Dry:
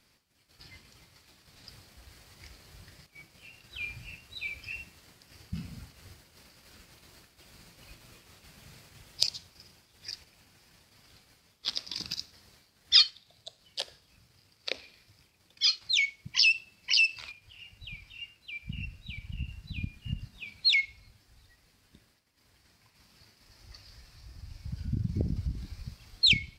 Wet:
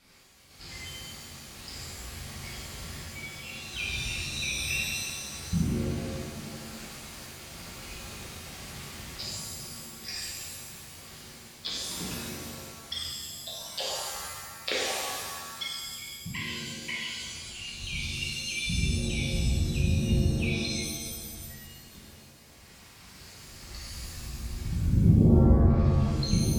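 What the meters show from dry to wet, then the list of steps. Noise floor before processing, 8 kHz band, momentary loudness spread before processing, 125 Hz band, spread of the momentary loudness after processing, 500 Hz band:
-67 dBFS, +9.0 dB, 22 LU, +12.5 dB, 16 LU, +15.5 dB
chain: low-pass that closes with the level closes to 380 Hz, closed at -29.5 dBFS; pitch-shifted reverb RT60 1.6 s, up +7 st, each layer -2 dB, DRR -8 dB; trim +2.5 dB

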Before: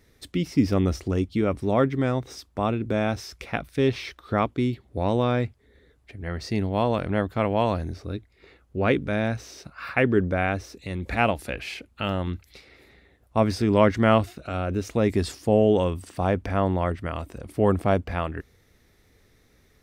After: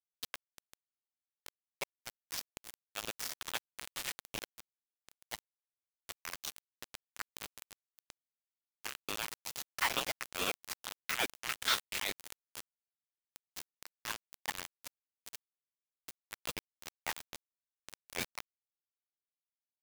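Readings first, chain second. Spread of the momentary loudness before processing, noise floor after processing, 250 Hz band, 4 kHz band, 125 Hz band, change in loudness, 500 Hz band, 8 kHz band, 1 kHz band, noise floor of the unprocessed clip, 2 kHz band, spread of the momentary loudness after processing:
13 LU, under -85 dBFS, -30.5 dB, -2.0 dB, -34.0 dB, -14.5 dB, -27.0 dB, +2.5 dB, -17.0 dB, -61 dBFS, -9.0 dB, 19 LU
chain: treble shelf 5.1 kHz -4.5 dB; rotary cabinet horn 8 Hz; compression 16:1, threshold -34 dBFS, peak gain reduction 21 dB; added noise pink -55 dBFS; level held to a coarse grid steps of 10 dB; delay 242 ms -9 dB; chorus voices 6, 0.2 Hz, delay 11 ms, depth 4 ms; Chebyshev high-pass 1.3 kHz, order 4; bit crusher 8-bit; ring modulator with a swept carrier 690 Hz, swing 65%, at 2.3 Hz; trim +18 dB

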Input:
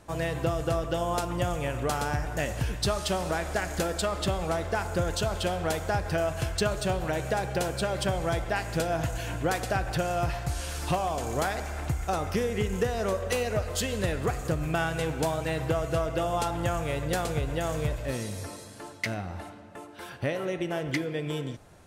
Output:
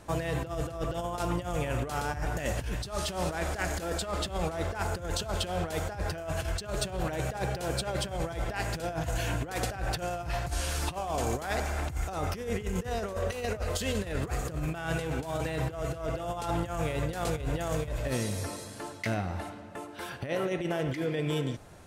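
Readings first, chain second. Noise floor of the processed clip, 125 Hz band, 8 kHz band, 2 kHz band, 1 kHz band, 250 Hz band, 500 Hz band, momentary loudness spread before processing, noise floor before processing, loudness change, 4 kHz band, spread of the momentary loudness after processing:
-43 dBFS, -2.0 dB, -2.0 dB, -3.5 dB, -3.5 dB, -2.5 dB, -4.0 dB, 5 LU, -45 dBFS, -3.0 dB, -2.5 dB, 3 LU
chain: compressor with a negative ratio -31 dBFS, ratio -0.5

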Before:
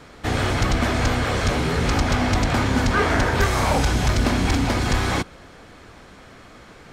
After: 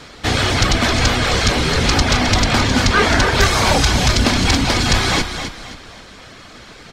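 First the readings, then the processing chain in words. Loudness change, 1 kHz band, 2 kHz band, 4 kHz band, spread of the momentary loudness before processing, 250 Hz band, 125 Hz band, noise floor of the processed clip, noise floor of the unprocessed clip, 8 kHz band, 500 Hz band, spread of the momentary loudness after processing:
+6.0 dB, +5.0 dB, +7.0 dB, +12.0 dB, 3 LU, +3.5 dB, +3.5 dB, -40 dBFS, -46 dBFS, +10.0 dB, +4.0 dB, 6 LU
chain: reverb removal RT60 0.54 s; peaking EQ 4.4 kHz +9 dB 1.8 oct; on a send: frequency-shifting echo 264 ms, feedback 35%, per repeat -30 Hz, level -8.5 dB; on the sum: trim +4.5 dB

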